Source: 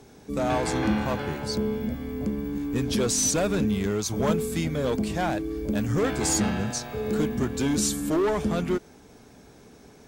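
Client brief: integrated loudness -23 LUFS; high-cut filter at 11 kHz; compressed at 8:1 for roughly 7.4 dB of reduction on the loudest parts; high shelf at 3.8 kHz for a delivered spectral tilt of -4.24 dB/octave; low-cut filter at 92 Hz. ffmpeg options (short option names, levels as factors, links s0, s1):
-af "highpass=92,lowpass=11000,highshelf=f=3800:g=3.5,acompressor=threshold=0.0447:ratio=8,volume=2.51"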